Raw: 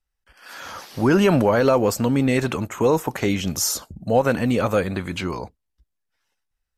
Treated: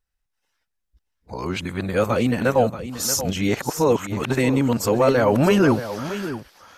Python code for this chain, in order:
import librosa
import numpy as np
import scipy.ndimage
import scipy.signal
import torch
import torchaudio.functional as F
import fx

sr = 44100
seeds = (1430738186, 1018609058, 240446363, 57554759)

p1 = np.flip(x).copy()
y = p1 + fx.echo_single(p1, sr, ms=631, db=-12.0, dry=0)